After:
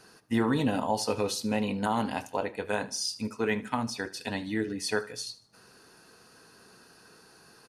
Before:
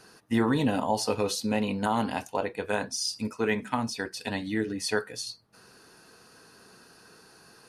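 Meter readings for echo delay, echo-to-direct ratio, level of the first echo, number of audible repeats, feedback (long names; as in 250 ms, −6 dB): 76 ms, −18.0 dB, −19.0 dB, 3, 41%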